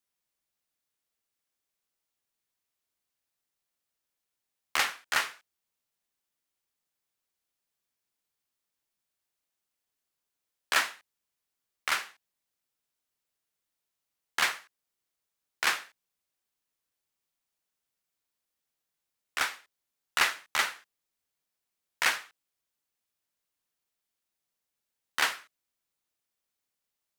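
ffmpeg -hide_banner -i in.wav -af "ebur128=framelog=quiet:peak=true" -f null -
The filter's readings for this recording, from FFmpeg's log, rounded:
Integrated loudness:
  I:         -29.9 LUFS
  Threshold: -40.9 LUFS
Loudness range:
  LRA:         6.6 LU
  Threshold: -55.7 LUFS
  LRA low:   -38.8 LUFS
  LRA high:  -32.3 LUFS
True peak:
  Peak:      -11.8 dBFS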